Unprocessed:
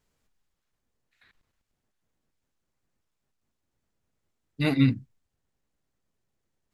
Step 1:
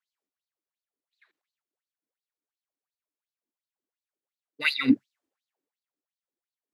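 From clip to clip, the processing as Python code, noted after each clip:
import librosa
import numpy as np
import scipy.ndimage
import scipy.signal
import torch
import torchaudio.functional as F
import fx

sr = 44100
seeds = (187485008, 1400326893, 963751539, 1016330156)

y = fx.filter_lfo_highpass(x, sr, shape='sine', hz=2.8, low_hz=280.0, high_hz=4400.0, q=6.5)
y = fx.band_widen(y, sr, depth_pct=40)
y = y * librosa.db_to_amplitude(-1.5)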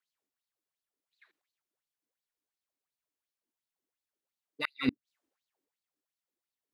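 y = fx.gate_flip(x, sr, shuts_db=-15.0, range_db=-40)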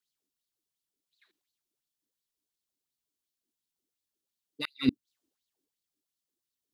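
y = fx.band_shelf(x, sr, hz=1100.0, db=-9.5, octaves=2.6)
y = y * librosa.db_to_amplitude(4.0)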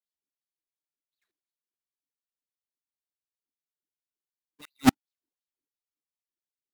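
y = fx.halfwave_hold(x, sr)
y = fx.upward_expand(y, sr, threshold_db=-30.0, expansion=2.5)
y = y * librosa.db_to_amplitude(3.5)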